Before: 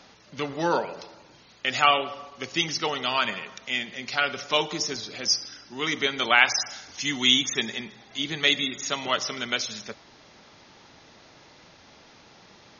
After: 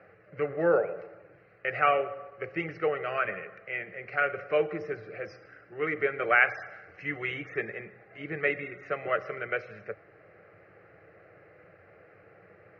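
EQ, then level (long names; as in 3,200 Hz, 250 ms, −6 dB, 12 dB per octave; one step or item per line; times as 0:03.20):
high-frequency loss of the air 83 metres
loudspeaker in its box 100–2,500 Hz, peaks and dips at 100 Hz +8 dB, 180 Hz +4 dB, 300 Hz +6 dB, 480 Hz +6 dB
phaser with its sweep stopped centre 940 Hz, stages 6
0.0 dB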